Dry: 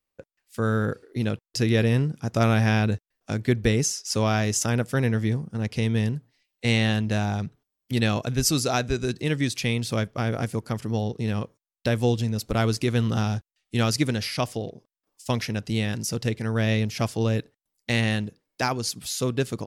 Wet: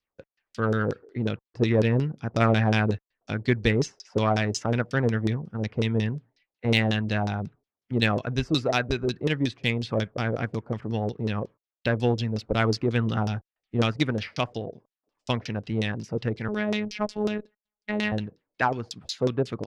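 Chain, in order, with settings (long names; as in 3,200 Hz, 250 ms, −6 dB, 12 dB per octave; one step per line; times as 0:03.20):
0:16.48–0:18.12: phases set to zero 211 Hz
auto-filter low-pass saw down 5.5 Hz 390–5,600 Hz
harmonic generator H 3 −23 dB, 5 −34 dB, 7 −32 dB, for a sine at −5.5 dBFS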